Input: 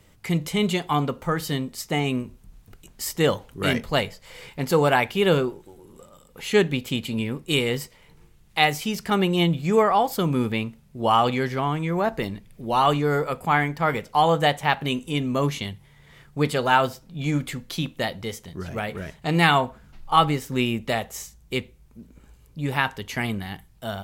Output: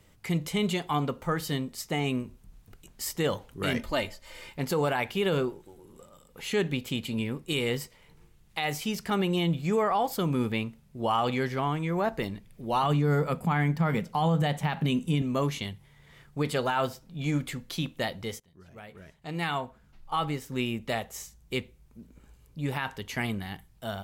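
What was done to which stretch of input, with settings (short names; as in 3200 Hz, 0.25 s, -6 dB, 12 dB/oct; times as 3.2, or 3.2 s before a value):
3.78–4.52 comb 3.3 ms, depth 69%
12.83–15.22 bell 180 Hz +15 dB
18.4–21.54 fade in linear, from -20.5 dB
whole clip: limiter -13.5 dBFS; gain -4 dB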